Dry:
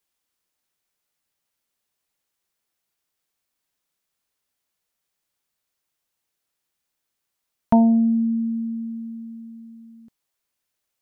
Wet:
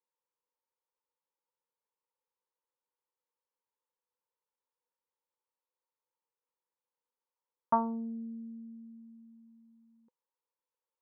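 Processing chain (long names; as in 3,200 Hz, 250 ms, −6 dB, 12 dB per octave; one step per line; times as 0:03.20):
pair of resonant band-passes 680 Hz, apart 0.86 octaves
highs frequency-modulated by the lows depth 0.16 ms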